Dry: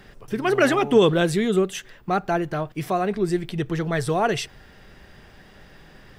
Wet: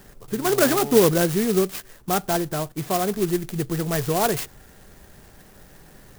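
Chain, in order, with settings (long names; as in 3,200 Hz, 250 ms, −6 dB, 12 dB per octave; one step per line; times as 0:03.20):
converter with an unsteady clock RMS 0.096 ms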